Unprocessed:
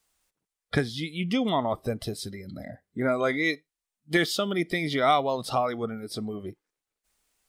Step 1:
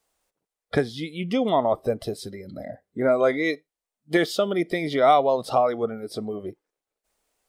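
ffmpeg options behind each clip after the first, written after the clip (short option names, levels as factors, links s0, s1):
-af "equalizer=f=550:t=o:w=1.7:g=10,volume=0.75"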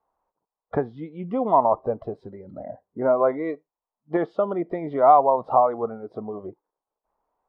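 -af "lowpass=f=970:t=q:w=4.3,volume=0.668"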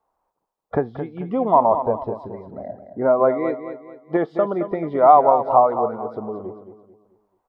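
-af "aecho=1:1:219|438|657|876:0.316|0.117|0.0433|0.016,volume=1.41"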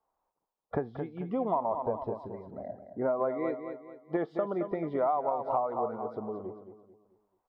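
-af "acompressor=threshold=0.126:ratio=6,volume=0.422"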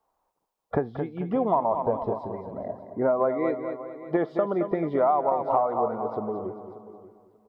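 -af "aecho=1:1:586|1172:0.158|0.0301,volume=2"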